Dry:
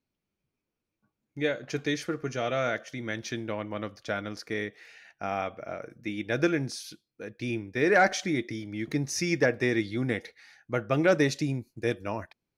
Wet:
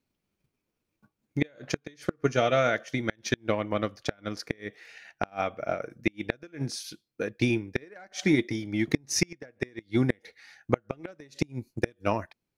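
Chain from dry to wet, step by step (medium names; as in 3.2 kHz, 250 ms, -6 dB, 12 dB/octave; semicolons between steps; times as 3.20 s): transient shaper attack +8 dB, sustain -3 dB; inverted gate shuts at -13 dBFS, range -32 dB; trim +3.5 dB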